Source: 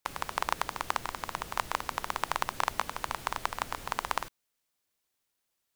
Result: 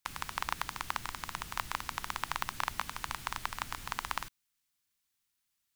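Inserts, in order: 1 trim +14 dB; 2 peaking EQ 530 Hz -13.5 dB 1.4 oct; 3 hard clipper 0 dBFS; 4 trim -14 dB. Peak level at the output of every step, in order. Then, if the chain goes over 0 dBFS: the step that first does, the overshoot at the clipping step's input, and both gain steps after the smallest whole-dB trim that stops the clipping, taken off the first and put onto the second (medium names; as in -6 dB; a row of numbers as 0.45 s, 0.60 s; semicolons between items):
+6.5 dBFS, +5.5 dBFS, 0.0 dBFS, -14.0 dBFS; step 1, 5.5 dB; step 1 +8 dB, step 4 -8 dB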